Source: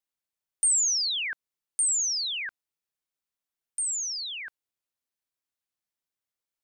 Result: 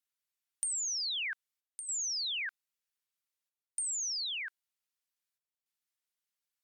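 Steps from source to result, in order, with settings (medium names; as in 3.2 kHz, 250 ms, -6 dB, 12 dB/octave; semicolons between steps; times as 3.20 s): high-pass 1.3 kHz 12 dB/octave; compression 12:1, threshold -33 dBFS, peak gain reduction 12.5 dB; square tremolo 0.53 Hz, depth 65%, duty 85%; Opus 96 kbps 48 kHz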